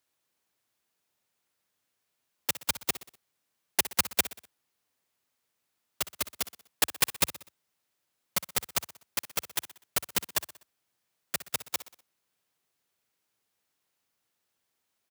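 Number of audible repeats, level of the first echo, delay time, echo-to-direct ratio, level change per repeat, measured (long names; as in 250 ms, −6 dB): 4, −14.5 dB, 62 ms, −13.5 dB, −6.5 dB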